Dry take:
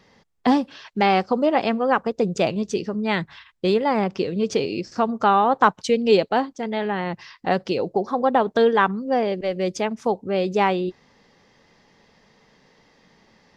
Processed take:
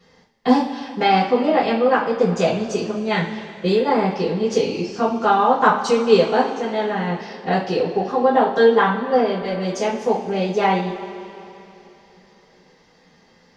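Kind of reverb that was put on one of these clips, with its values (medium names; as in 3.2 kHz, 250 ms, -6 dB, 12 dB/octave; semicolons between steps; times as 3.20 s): two-slope reverb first 0.35 s, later 3.2 s, from -18 dB, DRR -8.5 dB; trim -7 dB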